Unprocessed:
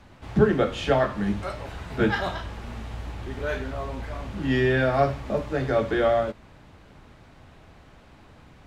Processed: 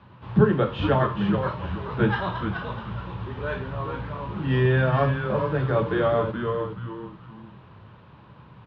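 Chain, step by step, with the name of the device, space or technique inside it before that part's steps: frequency-shifting delay pedal into a guitar cabinet (frequency-shifting echo 0.425 s, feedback 34%, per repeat -120 Hz, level -6 dB; speaker cabinet 84–3500 Hz, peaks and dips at 120 Hz +9 dB, 180 Hz +5 dB, 270 Hz -5 dB, 710 Hz -7 dB, 1000 Hz +8 dB, 2100 Hz -7 dB)

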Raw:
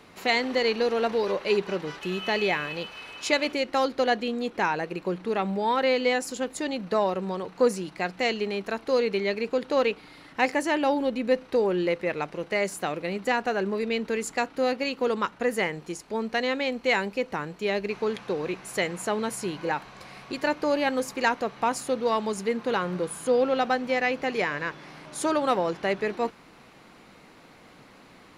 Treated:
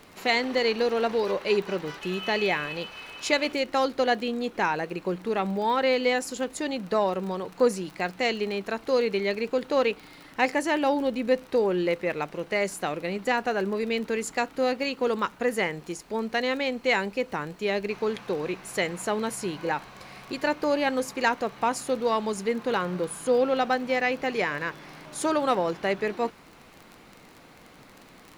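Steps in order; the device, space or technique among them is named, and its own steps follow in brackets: vinyl LP (crackle 22/s -34 dBFS; pink noise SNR 35 dB)

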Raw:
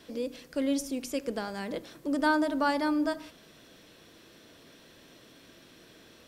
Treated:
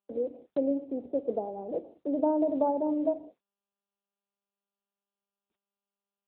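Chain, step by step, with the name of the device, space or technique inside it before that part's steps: Wiener smoothing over 25 samples; Chebyshev band-pass 120–780 Hz, order 4; gate -50 dBFS, range -58 dB; telephone (BPF 390–3000 Hz; gain +8 dB; AMR-NB 10.2 kbps 8000 Hz)

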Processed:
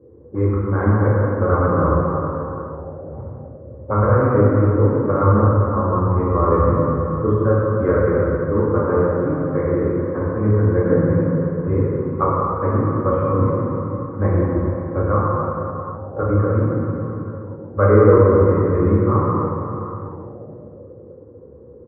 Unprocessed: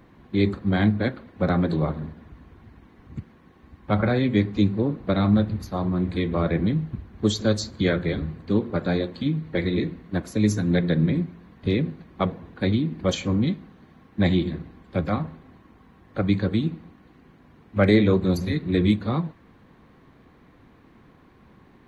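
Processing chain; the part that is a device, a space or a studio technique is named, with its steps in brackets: 15.13–16.36 LPF 2100 Hz 24 dB/oct; outdoor echo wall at 220 m, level -24 dB; plate-style reverb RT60 3.5 s, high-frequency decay 0.45×, DRR -7 dB; envelope filter bass rig (envelope low-pass 430–1100 Hz up, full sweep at -23 dBFS; speaker cabinet 72–2000 Hz, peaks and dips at 75 Hz +10 dB, 110 Hz +6 dB, 190 Hz -8 dB, 500 Hz +10 dB, 710 Hz -9 dB, 1300 Hz +4 dB); gain -4.5 dB

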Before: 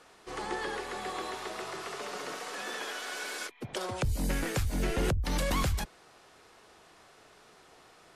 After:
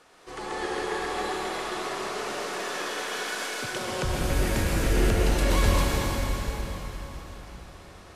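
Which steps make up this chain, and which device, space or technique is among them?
cathedral (reverb RT60 4.5 s, pre-delay 0.105 s, DRR -5.5 dB)

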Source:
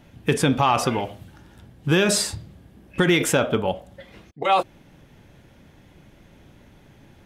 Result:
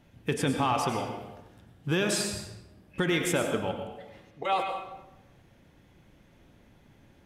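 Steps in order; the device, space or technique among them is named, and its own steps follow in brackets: bathroom (reverb RT60 1.0 s, pre-delay 91 ms, DRR 4.5 dB); gain -8.5 dB

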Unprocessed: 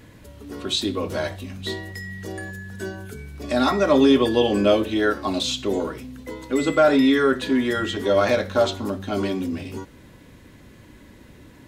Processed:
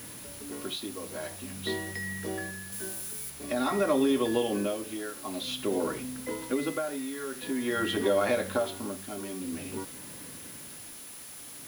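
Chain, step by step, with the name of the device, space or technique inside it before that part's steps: medium wave at night (BPF 130–3900 Hz; compressor, threshold -22 dBFS, peak gain reduction 10 dB; tremolo 0.49 Hz, depth 76%; whine 10000 Hz -46 dBFS; white noise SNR 15 dB); 2.72–3.3 high shelf 6200 Hz +9 dB

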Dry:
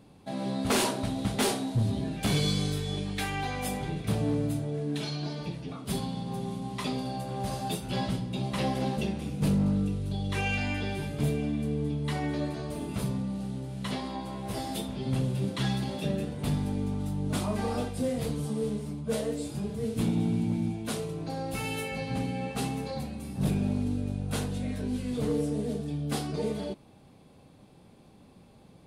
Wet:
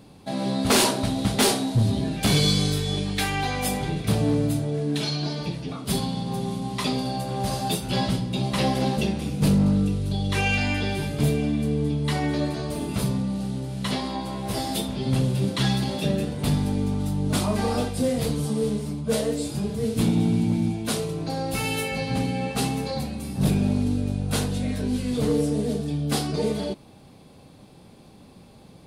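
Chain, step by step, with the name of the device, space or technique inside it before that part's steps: presence and air boost (bell 4600 Hz +3.5 dB 0.82 oct; high shelf 9200 Hz +4 dB); gain +6 dB

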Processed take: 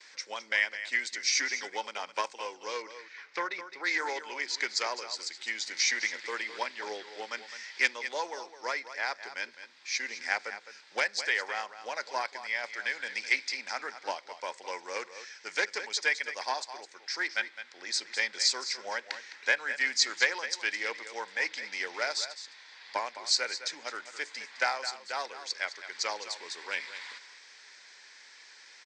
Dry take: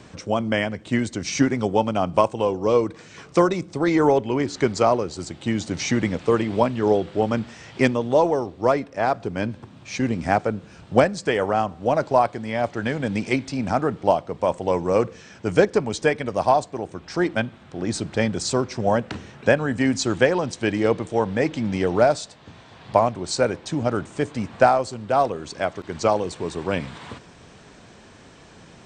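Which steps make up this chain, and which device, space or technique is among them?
gate with hold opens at -41 dBFS; HPF 1400 Hz 12 dB/oct; 2.82–3.84 LPF 2800 Hz 12 dB/oct; echo 0.21 s -12 dB; full-range speaker at full volume (Doppler distortion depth 0.11 ms; speaker cabinet 250–7200 Hz, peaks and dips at 680 Hz -9 dB, 1200 Hz -9 dB, 2000 Hz +6 dB, 2900 Hz -7 dB, 4800 Hz +7 dB)

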